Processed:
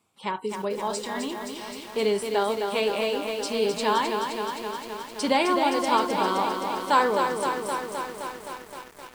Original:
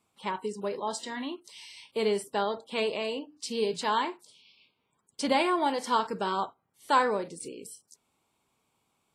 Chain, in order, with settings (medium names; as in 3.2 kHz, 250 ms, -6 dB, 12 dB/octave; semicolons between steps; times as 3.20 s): high-pass 51 Hz 24 dB/octave; bit-crushed delay 260 ms, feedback 80%, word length 8-bit, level -5.5 dB; trim +3 dB